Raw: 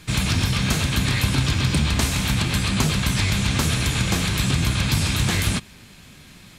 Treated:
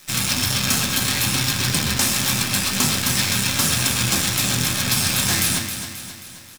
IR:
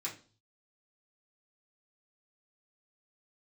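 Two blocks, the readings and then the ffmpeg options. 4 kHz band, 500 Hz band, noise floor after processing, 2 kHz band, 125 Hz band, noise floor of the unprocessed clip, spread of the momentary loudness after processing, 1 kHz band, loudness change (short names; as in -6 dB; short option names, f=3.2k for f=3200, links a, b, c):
+4.5 dB, -0.5 dB, -40 dBFS, +2.0 dB, -5.0 dB, -46 dBFS, 5 LU, +1.5 dB, +2.5 dB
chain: -filter_complex "[0:a]highpass=110,highshelf=f=5.9k:g=12,acrusher=bits=4:dc=4:mix=0:aa=0.000001,aecho=1:1:267|534|801|1068|1335|1602:0.355|0.181|0.0923|0.0471|0.024|0.0122,asplit=2[a][b];[1:a]atrim=start_sample=2205,asetrate=30429,aresample=44100[c];[b][c]afir=irnorm=-1:irlink=0,volume=-1.5dB[d];[a][d]amix=inputs=2:normalize=0,volume=-5.5dB"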